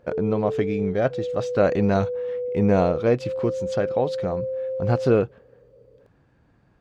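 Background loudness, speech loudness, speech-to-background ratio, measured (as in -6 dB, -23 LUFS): -29.0 LUFS, -24.0 LUFS, 5.0 dB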